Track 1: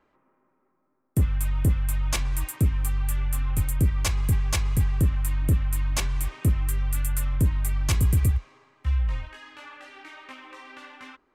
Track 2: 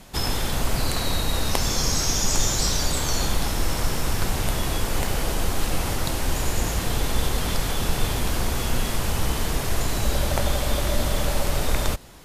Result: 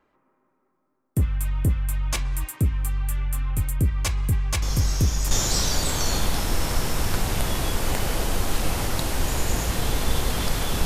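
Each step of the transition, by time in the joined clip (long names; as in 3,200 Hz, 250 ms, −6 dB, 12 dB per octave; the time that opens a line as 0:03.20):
track 1
0:04.62: mix in track 2 from 0:01.70 0.69 s −8.5 dB
0:05.31: continue with track 2 from 0:02.39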